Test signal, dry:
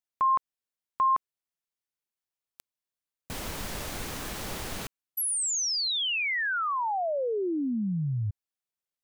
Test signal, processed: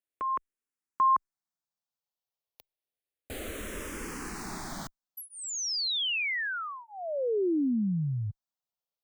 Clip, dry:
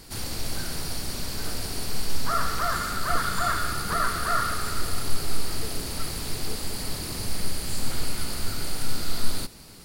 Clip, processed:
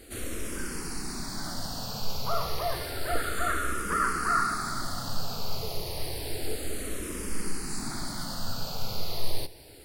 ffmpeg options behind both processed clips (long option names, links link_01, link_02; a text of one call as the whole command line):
ffmpeg -i in.wav -filter_complex "[0:a]equalizer=frequency=490:width=0.54:gain=5.5,asplit=2[link_01][link_02];[link_02]afreqshift=-0.3[link_03];[link_01][link_03]amix=inputs=2:normalize=1,volume=-1.5dB" out.wav